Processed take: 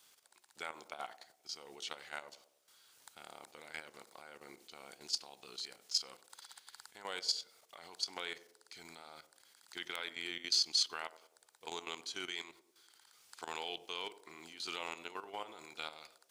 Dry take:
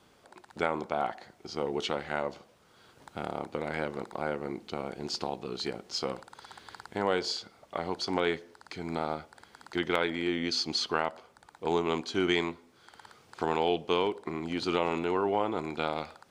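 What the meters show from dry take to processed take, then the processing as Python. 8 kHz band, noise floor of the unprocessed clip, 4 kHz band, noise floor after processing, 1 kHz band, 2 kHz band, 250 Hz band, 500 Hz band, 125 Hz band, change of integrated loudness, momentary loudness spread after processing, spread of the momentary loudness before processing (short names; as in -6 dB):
+2.0 dB, -62 dBFS, -2.0 dB, -73 dBFS, -14.5 dB, -9.5 dB, -23.0 dB, -20.5 dB, under -25 dB, -7.5 dB, 19 LU, 12 LU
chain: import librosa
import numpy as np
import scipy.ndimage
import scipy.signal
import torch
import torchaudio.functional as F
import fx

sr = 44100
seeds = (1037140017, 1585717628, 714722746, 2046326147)

p1 = F.preemphasis(torch.from_numpy(x), 0.97).numpy()
p2 = fx.level_steps(p1, sr, step_db=12)
p3 = p2 + fx.echo_banded(p2, sr, ms=98, feedback_pct=56, hz=420.0, wet_db=-13.5, dry=0)
y = p3 * librosa.db_to_amplitude(6.5)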